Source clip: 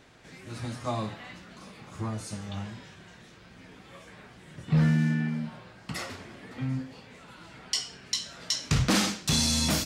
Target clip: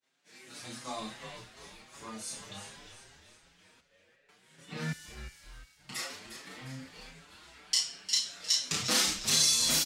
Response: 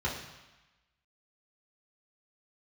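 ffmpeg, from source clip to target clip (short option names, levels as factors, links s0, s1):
-filter_complex "[0:a]highshelf=f=2300:g=12,asettb=1/sr,asplit=3[s0][s1][s2];[s0]atrim=end=6.474[s3];[s1]atrim=start=6.47:end=7.09,asetpts=PTS-STARTPTS,afade=t=in:d=0.004:c=qsin,afade=t=out:st=0.616:d=0.004:c=qsin,acompressor=mode=upward:threshold=0.0224:ratio=2.5[s4];[s2]atrim=start=7.086[s5];[s3][s4]acrossfade=d=0.004:c1=hsin:c2=qsin[s6];[s6][s5]acrossfade=d=0.004:c1=qsin:c2=hsin,highpass=210,asplit=2[s7][s8];[s8]adelay=32,volume=0.75[s9];[s7][s9]amix=inputs=2:normalize=0,agate=range=0.0224:threshold=0.01:ratio=3:detection=peak,asettb=1/sr,asplit=3[s10][s11][s12];[s10]atrim=end=3.804[s13];[s11]atrim=start=3.8:end=4.29,asetpts=PTS-STARTPTS,afade=t=in:d=0.004:c=qsin,afade=t=out:st=0.486:d=0.004:c=qsin,asplit=3[s14][s15][s16];[s14]bandpass=f=530:t=q:w=8,volume=1[s17];[s15]bandpass=f=1840:t=q:w=8,volume=0.501[s18];[s16]bandpass=f=2480:t=q:w=8,volume=0.355[s19];[s17][s18][s19]amix=inputs=3:normalize=0[s20];[s12]atrim=start=4.286[s21];[s13][s20]acrossfade=d=0.004:c1=hsin:c2=qsin[s22];[s22][s21]acrossfade=d=0.004:c1=qsin:c2=hsin,asettb=1/sr,asplit=3[s23][s24][s25];[s23]atrim=end=4.924[s26];[s24]atrim=start=4.92:end=5.8,asetpts=PTS-STARTPTS,afade=t=in:d=0.004:c=qsin,afade=t=out:st=0.876:d=0.004:c=qsin,aderivative[s27];[s25]atrim=start=5.796[s28];[s26][s27]acrossfade=d=0.004:c1=hsin:c2=qsin[s29];[s29][s28]acrossfade=d=0.004:c1=qsin:c2=hsin,asplit=5[s30][s31][s32][s33][s34];[s31]adelay=355,afreqshift=-98,volume=0.316[s35];[s32]adelay=710,afreqshift=-196,volume=0.133[s36];[s33]adelay=1065,afreqshift=-294,volume=0.0556[s37];[s34]adelay=1420,afreqshift=-392,volume=0.0234[s38];[s30][s35][s36][s37][s38]amix=inputs=5:normalize=0,asplit=2[s39][s40];[s40]adelay=6,afreqshift=2.7[s41];[s39][s41]amix=inputs=2:normalize=1,volume=0.447"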